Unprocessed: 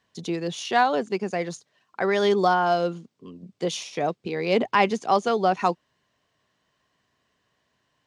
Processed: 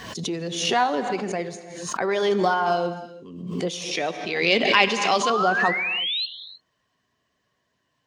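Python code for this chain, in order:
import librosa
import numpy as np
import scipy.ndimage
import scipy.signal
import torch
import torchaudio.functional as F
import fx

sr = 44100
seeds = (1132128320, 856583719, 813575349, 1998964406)

y = fx.spec_quant(x, sr, step_db=15)
y = fx.weighting(y, sr, curve='D', at=(3.91, 5.3))
y = fx.spec_paint(y, sr, seeds[0], shape='rise', start_s=5.23, length_s=1.03, low_hz=1000.0, high_hz=4300.0, level_db=-25.0)
y = fx.rev_gated(y, sr, seeds[1], gate_ms=360, shape='flat', drr_db=11.5)
y = fx.pre_swell(y, sr, db_per_s=49.0)
y = y * 10.0 ** (-1.0 / 20.0)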